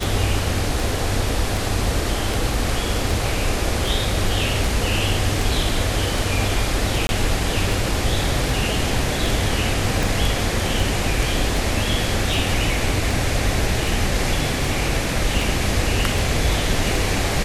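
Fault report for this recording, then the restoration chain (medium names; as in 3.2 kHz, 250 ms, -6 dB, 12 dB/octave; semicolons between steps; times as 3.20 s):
tick 78 rpm
7.07–7.09 s: dropout 21 ms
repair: de-click; interpolate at 7.07 s, 21 ms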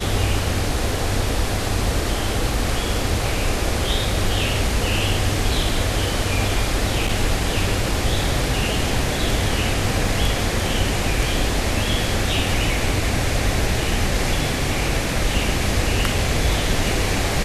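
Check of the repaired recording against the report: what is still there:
nothing left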